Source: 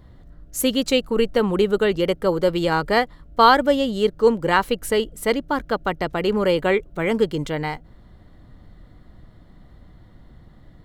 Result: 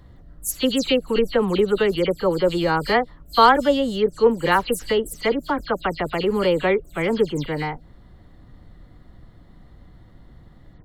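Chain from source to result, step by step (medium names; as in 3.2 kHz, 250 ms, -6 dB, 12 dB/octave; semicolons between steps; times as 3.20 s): delay that grows with frequency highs early, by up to 109 ms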